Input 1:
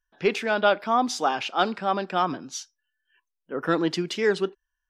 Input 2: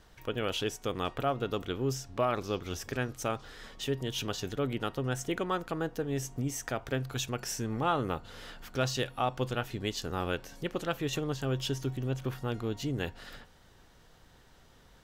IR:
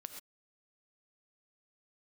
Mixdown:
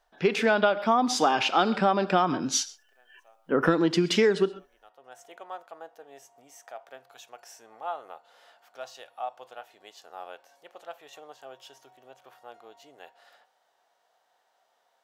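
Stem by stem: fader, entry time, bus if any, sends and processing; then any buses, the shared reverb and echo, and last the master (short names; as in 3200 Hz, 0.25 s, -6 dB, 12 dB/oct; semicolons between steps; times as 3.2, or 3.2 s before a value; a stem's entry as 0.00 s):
-2.0 dB, 0.00 s, send -9 dB, AGC gain up to 10 dB
-15.0 dB, 0.00 s, send -23 dB, resonant high-pass 700 Hz, resonance Q 3.6; auto duck -24 dB, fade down 0.40 s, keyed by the first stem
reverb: on, pre-delay 3 ms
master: harmonic-percussive split harmonic +5 dB; compressor 16:1, threshold -18 dBFS, peak gain reduction 14.5 dB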